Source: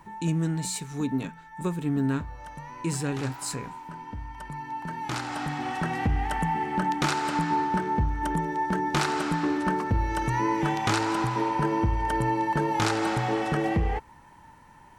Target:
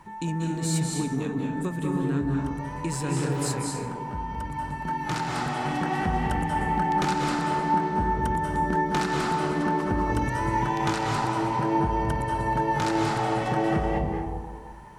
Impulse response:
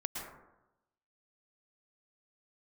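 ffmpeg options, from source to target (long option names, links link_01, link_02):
-filter_complex "[0:a]acompressor=threshold=-27dB:ratio=6[link_01];[1:a]atrim=start_sample=2205,asetrate=25578,aresample=44100[link_02];[link_01][link_02]afir=irnorm=-1:irlink=0"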